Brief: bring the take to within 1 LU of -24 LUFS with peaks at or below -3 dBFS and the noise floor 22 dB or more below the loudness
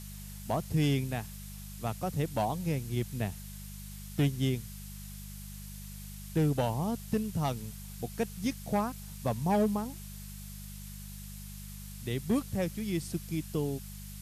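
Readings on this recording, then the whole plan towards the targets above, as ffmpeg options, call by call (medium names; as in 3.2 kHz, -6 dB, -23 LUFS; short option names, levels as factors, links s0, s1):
hum 50 Hz; highest harmonic 200 Hz; hum level -43 dBFS; noise floor -44 dBFS; noise floor target -55 dBFS; loudness -33.0 LUFS; peak level -19.0 dBFS; loudness target -24.0 LUFS
-> -af "bandreject=f=50:t=h:w=4,bandreject=f=100:t=h:w=4,bandreject=f=150:t=h:w=4,bandreject=f=200:t=h:w=4"
-af "afftdn=nr=11:nf=-44"
-af "volume=2.82"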